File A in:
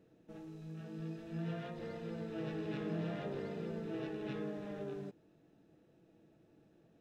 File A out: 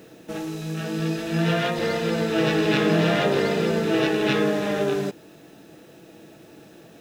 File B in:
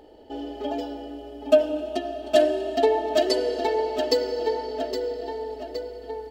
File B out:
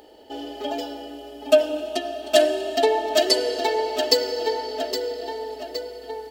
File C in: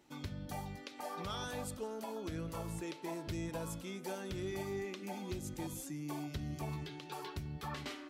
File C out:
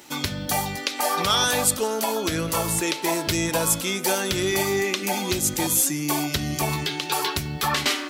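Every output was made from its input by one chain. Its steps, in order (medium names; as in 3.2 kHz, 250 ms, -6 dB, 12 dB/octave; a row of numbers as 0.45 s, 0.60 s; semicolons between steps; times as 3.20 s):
tilt EQ +2.5 dB/octave; normalise loudness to -23 LUFS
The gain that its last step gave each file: +23.0 dB, +3.0 dB, +19.5 dB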